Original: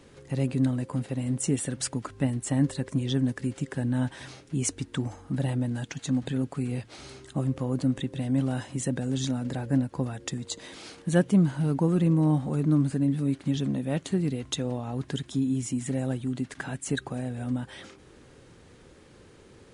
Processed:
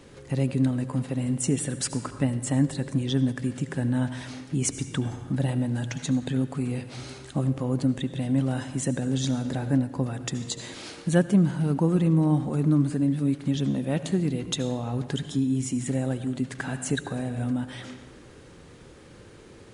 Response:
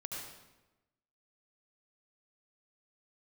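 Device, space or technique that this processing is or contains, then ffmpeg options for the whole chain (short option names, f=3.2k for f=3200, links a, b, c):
ducked reverb: -filter_complex "[0:a]asplit=3[a][b][c];[1:a]atrim=start_sample=2205[d];[b][d]afir=irnorm=-1:irlink=0[e];[c]apad=whole_len=870445[f];[e][f]sidechaincompress=threshold=-29dB:ratio=8:attack=30:release=1110,volume=-1.5dB[g];[a][g]amix=inputs=2:normalize=0"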